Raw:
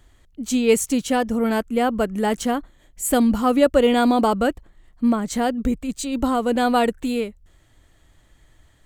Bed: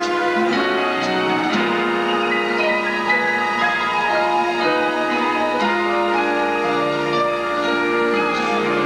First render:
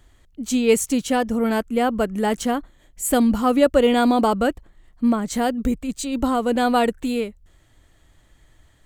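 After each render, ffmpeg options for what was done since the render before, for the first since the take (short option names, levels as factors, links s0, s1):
-filter_complex "[0:a]asettb=1/sr,asplit=3[s0][s1][s2];[s0]atrim=end=5.344[s3];[s1]atrim=start=5.34:end=5.74,asetpts=PTS-STARTPTS,afade=t=in:d=0.004:c=qsin,afade=t=out:st=0.396:d=0.004:c=qsin,highshelf=f=8500:g=6[s4];[s2]atrim=start=5.736[s5];[s3][s4]acrossfade=d=0.004:c1=hsin:c2=qsin[s6];[s6][s5]acrossfade=d=0.004:c1=qsin:c2=hsin"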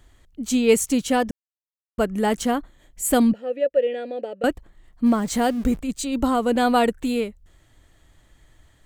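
-filter_complex "[0:a]asettb=1/sr,asplit=3[s0][s1][s2];[s0]atrim=end=3.334[s3];[s1]atrim=start=3.33:end=4.44,asetpts=PTS-STARTPTS,afade=t=in:d=0.004:c=qsin,afade=t=out:st=1.106:d=0.004:c=qsin,asplit=3[s4][s5][s6];[s4]bandpass=f=530:t=q:w=8,volume=1[s7];[s5]bandpass=f=1840:t=q:w=8,volume=0.501[s8];[s6]bandpass=f=2480:t=q:w=8,volume=0.355[s9];[s7][s8][s9]amix=inputs=3:normalize=0[s10];[s2]atrim=start=4.436[s11];[s3][s10]acrossfade=d=0.004:c1=hsin:c2=qsin[s12];[s12][s11]acrossfade=d=0.004:c1=qsin:c2=hsin,asettb=1/sr,asplit=3[s13][s14][s15];[s13]atrim=end=5.064[s16];[s14]atrim=start=5.06:end=5.81,asetpts=PTS-STARTPTS,afade=t=in:d=0.004:c=qsin,afade=t=out:st=0.746:d=0.004:c=qsin,aeval=exprs='val(0)+0.5*0.015*sgn(val(0))':c=same[s17];[s15]atrim=start=5.806[s18];[s16][s17]acrossfade=d=0.004:c1=hsin:c2=qsin[s19];[s19][s18]acrossfade=d=0.004:c1=qsin:c2=hsin,asplit=3[s20][s21][s22];[s20]atrim=end=1.31,asetpts=PTS-STARTPTS,afade=t=out:st=1.306:d=0.004:c=hsin[s23];[s21]atrim=start=1.31:end=1.98,asetpts=PTS-STARTPTS,volume=0[s24];[s22]atrim=start=1.98,asetpts=PTS-STARTPTS,afade=t=in:d=0.004:c=hsin[s25];[s23][s24][s25]concat=n=3:v=0:a=1"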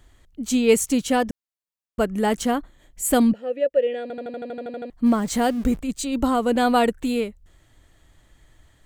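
-filter_complex "[0:a]asplit=12[s0][s1][s2][s3][s4][s5][s6][s7][s8][s9][s10][s11];[s0]atrim=end=4.102[s12];[s1]atrim=start=4.018:end=4.102[s13];[s2]atrim=start=4.018:end=4.102[s14];[s3]atrim=start=4.018:end=4.102[s15];[s4]atrim=start=4.018:end=4.102[s16];[s5]atrim=start=4.018:end=4.102[s17];[s6]atrim=start=4.018:end=4.102[s18];[s7]atrim=start=4.018:end=4.102[s19];[s8]atrim=start=4.018:end=4.102[s20];[s9]atrim=start=4.018:end=4.102[s21];[s10]atrim=start=4.018:end=4.102[s22];[s11]atrim=start=4.898[s23];[s12][s13]acrossfade=d=0.004:c1=hsin:c2=hsin[s24];[s24][s14]acrossfade=d=0.004:c1=hsin:c2=hsin[s25];[s25][s15]acrossfade=d=0.004:c1=hsin:c2=hsin[s26];[s26][s16]acrossfade=d=0.004:c1=hsin:c2=hsin[s27];[s27][s17]acrossfade=d=0.004:c1=hsin:c2=hsin[s28];[s28][s18]acrossfade=d=0.004:c1=hsin:c2=hsin[s29];[s29][s19]acrossfade=d=0.004:c1=hsin:c2=hsin[s30];[s30][s20]acrossfade=d=0.004:c1=hsin:c2=hsin[s31];[s31][s21]acrossfade=d=0.004:c1=hsin:c2=hsin[s32];[s32][s22]acrossfade=d=0.004:c1=hsin:c2=hsin[s33];[s33][s23]acrossfade=d=0.004:c1=hsin:c2=hsin"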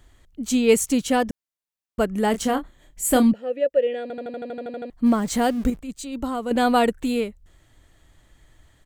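-filter_complex "[0:a]asplit=3[s0][s1][s2];[s0]afade=t=out:st=2.33:d=0.02[s3];[s1]asplit=2[s4][s5];[s5]adelay=27,volume=0.376[s6];[s4][s6]amix=inputs=2:normalize=0,afade=t=in:st=2.33:d=0.02,afade=t=out:st=3.3:d=0.02[s7];[s2]afade=t=in:st=3.3:d=0.02[s8];[s3][s7][s8]amix=inputs=3:normalize=0,asplit=3[s9][s10][s11];[s9]atrim=end=5.702[s12];[s10]atrim=start=5.698:end=6.512,asetpts=PTS-STARTPTS,volume=0.473[s13];[s11]atrim=start=6.508[s14];[s12][s13]acrossfade=d=0.004:c1=hsin:c2=hsin[s15];[s15][s14]acrossfade=d=0.004:c1=hsin:c2=hsin"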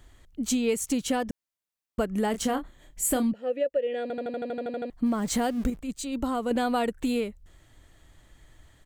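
-af "acompressor=threshold=0.0708:ratio=6"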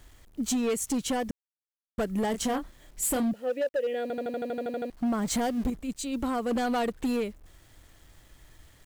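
-af "acrusher=bits=9:mix=0:aa=0.000001,asoftclip=type=hard:threshold=0.0668"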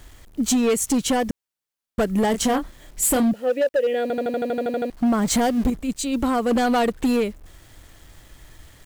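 -af "volume=2.51"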